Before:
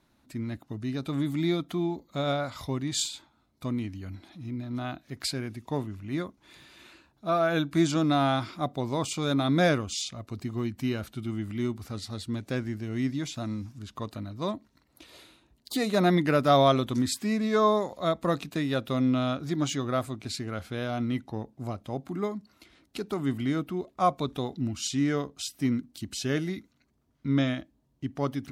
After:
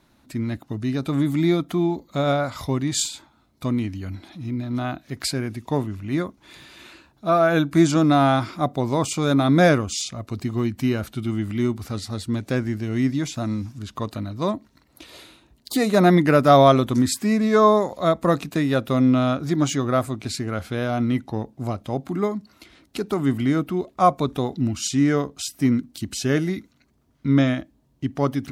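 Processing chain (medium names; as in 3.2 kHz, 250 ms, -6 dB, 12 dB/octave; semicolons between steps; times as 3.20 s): dynamic bell 3.5 kHz, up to -5 dB, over -48 dBFS, Q 1.3; trim +7.5 dB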